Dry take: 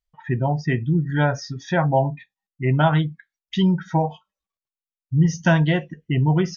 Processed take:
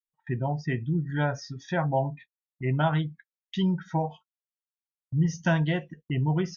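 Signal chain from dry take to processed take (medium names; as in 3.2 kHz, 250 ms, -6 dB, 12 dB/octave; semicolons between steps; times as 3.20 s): gate -39 dBFS, range -24 dB; trim -7 dB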